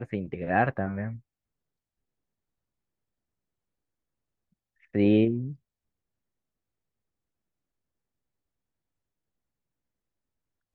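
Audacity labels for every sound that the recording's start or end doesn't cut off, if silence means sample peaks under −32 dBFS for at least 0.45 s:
4.950000	5.520000	sound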